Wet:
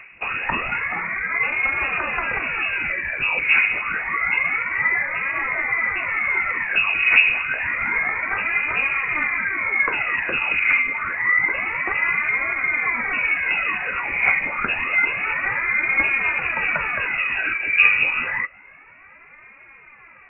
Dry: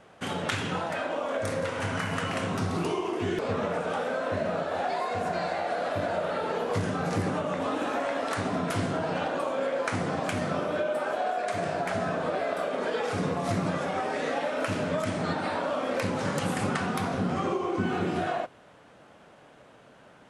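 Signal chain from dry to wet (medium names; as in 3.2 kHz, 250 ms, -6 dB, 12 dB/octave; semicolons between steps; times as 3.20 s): phaser 0.28 Hz, delay 3.9 ms, feedback 66%; frequency inversion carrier 2.7 kHz; trim +5 dB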